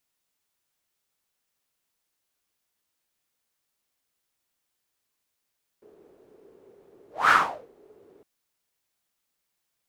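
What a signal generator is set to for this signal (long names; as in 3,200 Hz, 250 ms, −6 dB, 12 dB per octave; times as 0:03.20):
pass-by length 2.41 s, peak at 0:01.48, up 0.22 s, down 0.43 s, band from 410 Hz, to 1,400 Hz, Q 6.4, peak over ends 38.5 dB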